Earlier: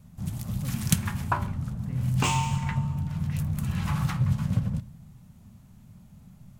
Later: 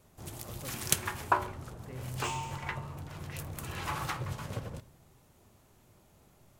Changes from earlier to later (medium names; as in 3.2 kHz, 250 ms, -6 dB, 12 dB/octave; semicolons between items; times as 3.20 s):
second sound -10.0 dB; master: add resonant low shelf 270 Hz -11 dB, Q 3